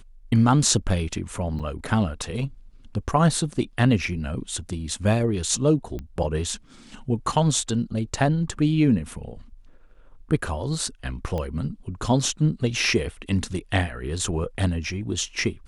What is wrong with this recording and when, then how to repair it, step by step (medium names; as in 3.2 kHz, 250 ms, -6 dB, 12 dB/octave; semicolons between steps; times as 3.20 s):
1.59–1.60 s: dropout 6.5 ms
5.99 s: pop -22 dBFS
11.38 s: pop -18 dBFS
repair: de-click; interpolate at 1.59 s, 6.5 ms